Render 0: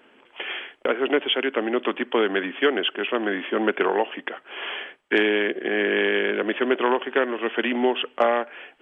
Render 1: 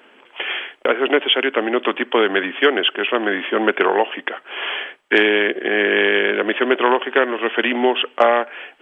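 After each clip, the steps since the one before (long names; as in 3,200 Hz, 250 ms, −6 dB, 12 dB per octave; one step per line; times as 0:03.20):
low-shelf EQ 240 Hz −9.5 dB
level +7 dB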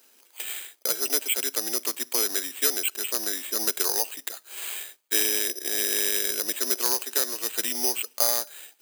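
bad sample-rate conversion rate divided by 8×, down none, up zero stuff
level −18 dB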